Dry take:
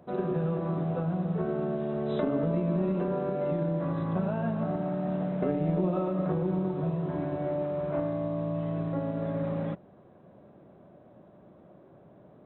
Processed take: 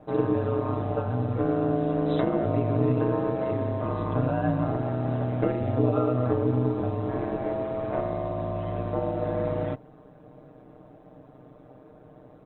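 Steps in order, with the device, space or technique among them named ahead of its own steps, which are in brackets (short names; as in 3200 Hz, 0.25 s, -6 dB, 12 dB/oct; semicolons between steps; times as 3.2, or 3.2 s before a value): ring-modulated robot voice (ring modulator 63 Hz; comb 6.6 ms, depth 78%); gain +5.5 dB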